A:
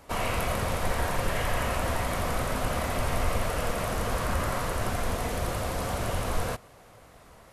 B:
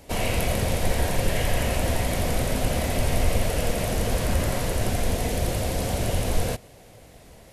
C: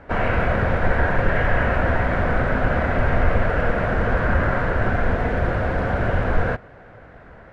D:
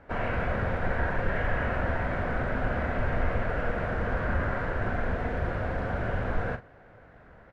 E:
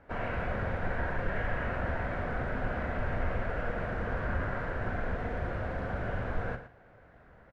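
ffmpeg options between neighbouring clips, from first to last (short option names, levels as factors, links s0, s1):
-af "equalizer=f=1200:w=1.6:g=-14,volume=2"
-af "lowpass=f=1500:t=q:w=4.7,volume=1.5"
-filter_complex "[0:a]asplit=2[s0][s1];[s1]adelay=42,volume=0.282[s2];[s0][s2]amix=inputs=2:normalize=0,volume=0.355"
-af "aecho=1:1:114:0.251,volume=0.596"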